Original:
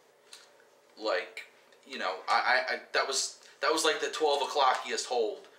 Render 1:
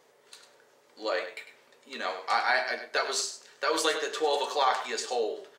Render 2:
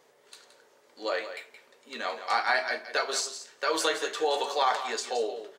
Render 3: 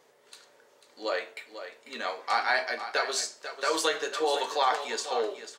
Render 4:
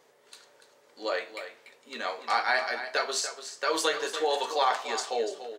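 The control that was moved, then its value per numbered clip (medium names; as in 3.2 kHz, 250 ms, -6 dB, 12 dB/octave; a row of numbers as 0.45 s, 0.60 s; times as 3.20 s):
delay, time: 101 ms, 172 ms, 494 ms, 290 ms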